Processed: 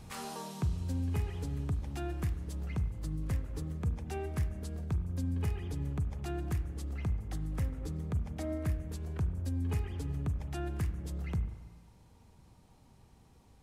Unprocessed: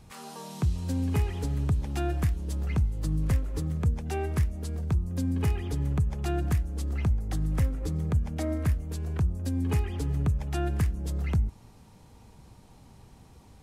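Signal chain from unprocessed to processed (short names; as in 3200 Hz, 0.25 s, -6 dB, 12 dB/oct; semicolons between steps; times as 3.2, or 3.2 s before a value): vocal rider 0.5 s; spring tank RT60 1.4 s, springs 35/46 ms, chirp 60 ms, DRR 10 dB; gain -7.5 dB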